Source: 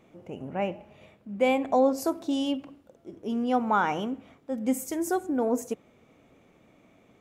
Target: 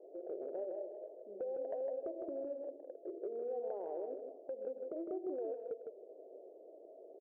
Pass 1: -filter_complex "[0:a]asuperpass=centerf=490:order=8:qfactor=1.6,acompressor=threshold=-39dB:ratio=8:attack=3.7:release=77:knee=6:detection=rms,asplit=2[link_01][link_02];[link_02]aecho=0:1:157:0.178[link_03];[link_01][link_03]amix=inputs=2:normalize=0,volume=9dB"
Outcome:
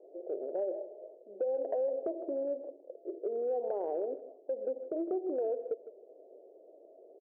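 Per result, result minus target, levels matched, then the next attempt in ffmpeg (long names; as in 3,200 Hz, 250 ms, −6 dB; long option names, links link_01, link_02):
downward compressor: peak gain reduction −8.5 dB; echo-to-direct −9.5 dB
-filter_complex "[0:a]asuperpass=centerf=490:order=8:qfactor=1.6,acompressor=threshold=-48.5dB:ratio=8:attack=3.7:release=77:knee=6:detection=rms,asplit=2[link_01][link_02];[link_02]aecho=0:1:157:0.178[link_03];[link_01][link_03]amix=inputs=2:normalize=0,volume=9dB"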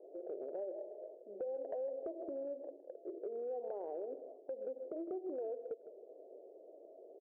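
echo-to-direct −9.5 dB
-filter_complex "[0:a]asuperpass=centerf=490:order=8:qfactor=1.6,acompressor=threshold=-48.5dB:ratio=8:attack=3.7:release=77:knee=6:detection=rms,asplit=2[link_01][link_02];[link_02]aecho=0:1:157:0.531[link_03];[link_01][link_03]amix=inputs=2:normalize=0,volume=9dB"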